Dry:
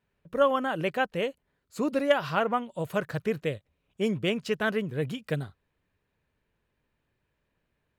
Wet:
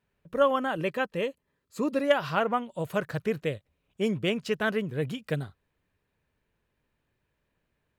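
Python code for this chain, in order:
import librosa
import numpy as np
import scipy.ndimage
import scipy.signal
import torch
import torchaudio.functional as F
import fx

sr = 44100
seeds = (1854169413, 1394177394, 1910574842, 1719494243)

y = fx.notch_comb(x, sr, f0_hz=730.0, at=(0.77, 2.04))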